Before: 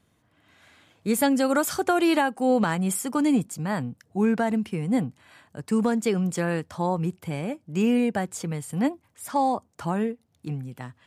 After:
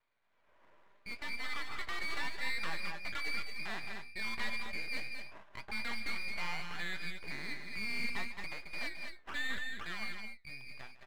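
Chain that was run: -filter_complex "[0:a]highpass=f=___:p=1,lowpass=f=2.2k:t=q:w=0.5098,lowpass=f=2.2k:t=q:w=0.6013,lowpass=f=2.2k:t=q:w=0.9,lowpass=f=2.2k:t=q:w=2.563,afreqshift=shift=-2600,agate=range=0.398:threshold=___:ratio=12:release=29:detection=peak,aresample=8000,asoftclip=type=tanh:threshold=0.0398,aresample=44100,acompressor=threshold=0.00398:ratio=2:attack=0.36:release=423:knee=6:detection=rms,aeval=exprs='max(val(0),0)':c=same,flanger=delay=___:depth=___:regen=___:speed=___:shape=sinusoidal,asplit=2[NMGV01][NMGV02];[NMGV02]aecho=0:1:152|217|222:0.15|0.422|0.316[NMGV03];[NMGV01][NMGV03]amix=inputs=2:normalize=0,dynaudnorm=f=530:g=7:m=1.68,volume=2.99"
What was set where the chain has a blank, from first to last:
1.1k, 0.001, 8.4, 6.3, 73, 0.71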